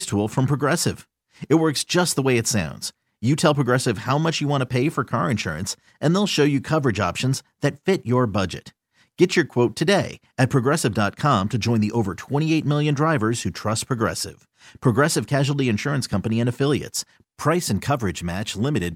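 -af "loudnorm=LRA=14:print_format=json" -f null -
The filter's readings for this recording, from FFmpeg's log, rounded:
"input_i" : "-22.0",
"input_tp" : "-3.5",
"input_lra" : "2.3",
"input_thresh" : "-32.3",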